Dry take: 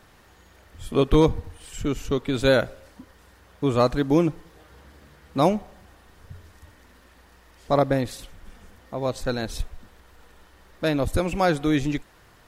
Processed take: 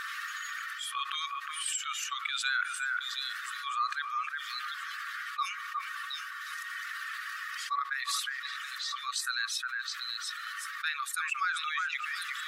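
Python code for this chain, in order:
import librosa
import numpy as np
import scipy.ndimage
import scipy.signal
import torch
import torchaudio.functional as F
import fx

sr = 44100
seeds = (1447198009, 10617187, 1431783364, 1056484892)

y = fx.spec_expand(x, sr, power=1.6)
y = fx.brickwall_highpass(y, sr, low_hz=1100.0)
y = fx.echo_stepped(y, sr, ms=360, hz=1600.0, octaves=1.4, feedback_pct=70, wet_db=-8.0)
y = fx.env_flatten(y, sr, amount_pct=70)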